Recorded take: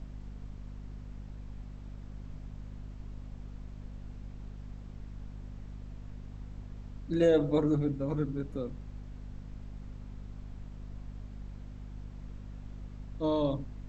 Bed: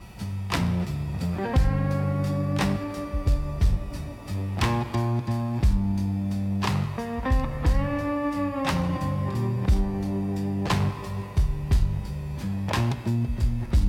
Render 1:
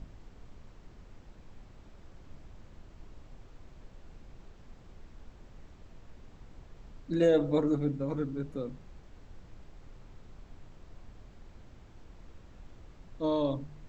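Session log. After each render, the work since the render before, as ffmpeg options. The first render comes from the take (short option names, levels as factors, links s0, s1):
-af "bandreject=f=50:t=h:w=4,bandreject=f=100:t=h:w=4,bandreject=f=150:t=h:w=4,bandreject=f=200:t=h:w=4,bandreject=f=250:t=h:w=4"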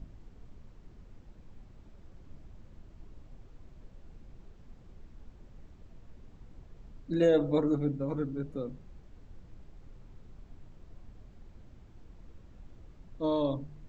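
-af "afftdn=nr=6:nf=-54"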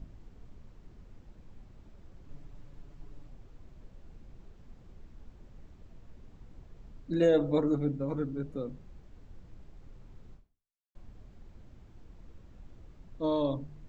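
-filter_complex "[0:a]asettb=1/sr,asplit=3[s0][s1][s2];[s0]atrim=end=2.284[s3];[s1]atrim=start=2.28:end=3.3,asetpts=PTS-STARTPTS,afade=t=in:d=0.004:c=qsin,afade=t=out:st=1.016:d=0.004:c=qsin,aecho=1:1:7:0.65,atrim=end_sample=44982[s4];[s2]atrim=start=3.296[s5];[s3][s4]acrossfade=d=0.004:c1=hsin:c2=qsin[s6];[s6][s5]acrossfade=d=0.004:c1=qsin:c2=hsin,asplit=2[s7][s8];[s7]atrim=end=10.95,asetpts=PTS-STARTPTS,afade=t=out:st=10.34:d=0.61:c=exp[s9];[s8]atrim=start=10.95,asetpts=PTS-STARTPTS,afade=t=in:d=0.004:c=hsin[s10];[s9][s10]concat=n=2:v=0:a=1"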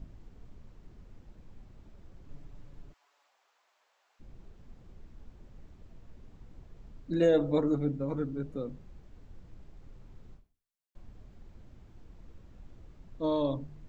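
-filter_complex "[0:a]asplit=3[s0][s1][s2];[s0]afade=t=out:st=2.92:d=0.02[s3];[s1]highpass=f=780:w=0.5412,highpass=f=780:w=1.3066,afade=t=in:st=2.92:d=0.02,afade=t=out:st=4.19:d=0.02[s4];[s2]afade=t=in:st=4.19:d=0.02[s5];[s3][s4][s5]amix=inputs=3:normalize=0"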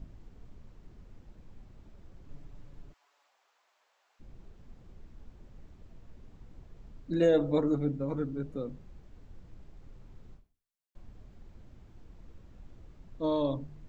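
-af anull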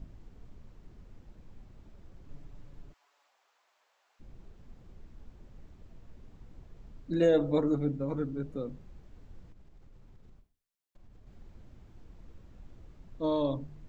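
-filter_complex "[0:a]asettb=1/sr,asplit=3[s0][s1][s2];[s0]atrim=end=9.524[s3];[s1]atrim=start=9.52:end=11.27,asetpts=PTS-STARTPTS,afade=t=in:d=0.004:c=qsin,afade=t=out:st=1.746:d=0.004:c=qsin,acompressor=threshold=0.00316:ratio=6:attack=3.2:release=140:knee=1:detection=peak[s4];[s2]atrim=start=11.266[s5];[s3][s4]acrossfade=d=0.004:c1=hsin:c2=qsin[s6];[s6][s5]acrossfade=d=0.004:c1=qsin:c2=hsin"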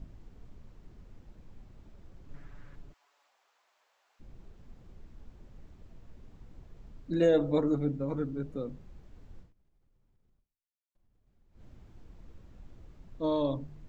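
-filter_complex "[0:a]asettb=1/sr,asplit=3[s0][s1][s2];[s0]atrim=end=2.344[s3];[s1]atrim=start=2.34:end=2.76,asetpts=PTS-STARTPTS,afade=t=in:d=0.004:c=qsin,afade=t=out:st=0.416:d=0.004:c=qsin,equalizer=f=1600:w=1.4:g=13.5[s4];[s2]atrim=start=2.756[s5];[s3][s4]acrossfade=d=0.004:c1=hsin:c2=qsin[s6];[s6][s5]acrossfade=d=0.004:c1=qsin:c2=hsin,asplit=3[s7][s8][s9];[s7]atrim=end=9.56,asetpts=PTS-STARTPTS,afade=t=out:st=9.4:d=0.16:c=qua:silence=0.158489[s10];[s8]atrim=start=9.56:end=11.47,asetpts=PTS-STARTPTS,volume=0.158[s11];[s9]atrim=start=11.47,asetpts=PTS-STARTPTS,afade=t=in:d=0.16:c=qua:silence=0.158489[s12];[s10][s11][s12]concat=n=3:v=0:a=1"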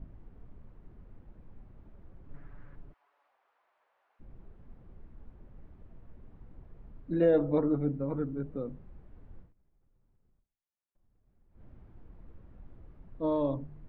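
-af "lowpass=1800"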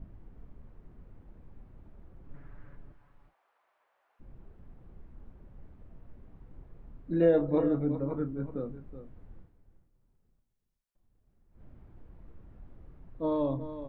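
-filter_complex "[0:a]asplit=2[s0][s1];[s1]adelay=30,volume=0.266[s2];[s0][s2]amix=inputs=2:normalize=0,aecho=1:1:373:0.251"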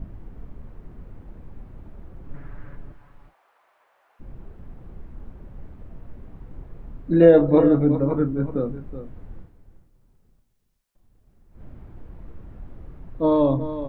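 -af "volume=3.55"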